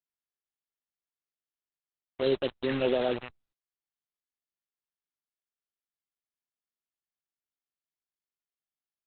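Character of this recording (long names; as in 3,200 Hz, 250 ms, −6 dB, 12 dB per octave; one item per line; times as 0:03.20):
tremolo triangle 1.9 Hz, depth 40%
phaser sweep stages 6, 1.4 Hz, lowest notch 800–2,200 Hz
a quantiser's noise floor 6 bits, dither none
Opus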